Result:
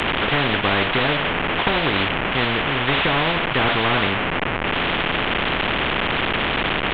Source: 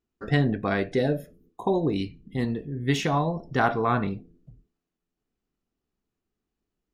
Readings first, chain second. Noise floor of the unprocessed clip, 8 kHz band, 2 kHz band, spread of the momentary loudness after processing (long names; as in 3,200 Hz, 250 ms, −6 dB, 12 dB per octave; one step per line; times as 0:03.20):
below −85 dBFS, below −10 dB, +15.5 dB, 2 LU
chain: linear delta modulator 16 kbit/s, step −34.5 dBFS
every bin compressed towards the loudest bin 4 to 1
level +5.5 dB